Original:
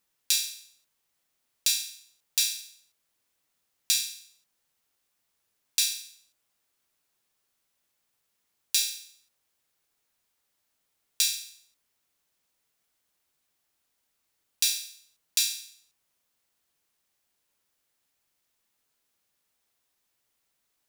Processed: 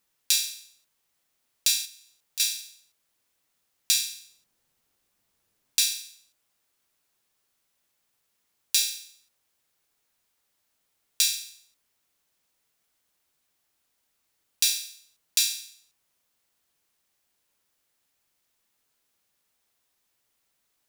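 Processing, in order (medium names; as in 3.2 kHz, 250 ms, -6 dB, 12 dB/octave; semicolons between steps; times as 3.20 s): 1.85–2.40 s: compression 2:1, threshold -49 dBFS, peak gain reduction 15.5 dB; 4.11–5.82 s: bass shelf 500 Hz +7.5 dB; trim +2 dB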